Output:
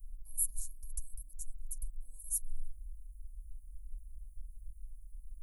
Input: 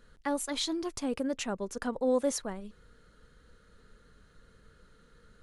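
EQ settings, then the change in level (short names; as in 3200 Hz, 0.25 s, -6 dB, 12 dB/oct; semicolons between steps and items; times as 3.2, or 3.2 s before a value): inverse Chebyshev band-stop 200–3600 Hz, stop band 70 dB; +17.0 dB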